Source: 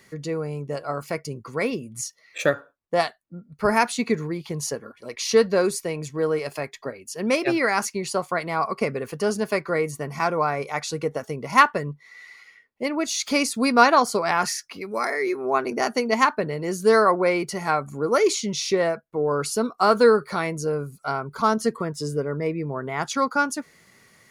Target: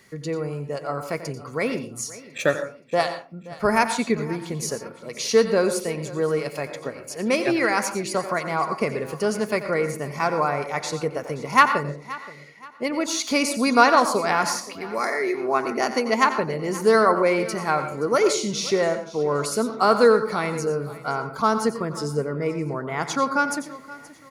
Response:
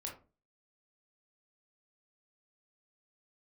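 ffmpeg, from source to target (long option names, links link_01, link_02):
-filter_complex "[0:a]aecho=1:1:525|1050|1575:0.119|0.0416|0.0146,asplit=2[link_01][link_02];[1:a]atrim=start_sample=2205,adelay=90[link_03];[link_02][link_03]afir=irnorm=-1:irlink=0,volume=-7.5dB[link_04];[link_01][link_04]amix=inputs=2:normalize=0"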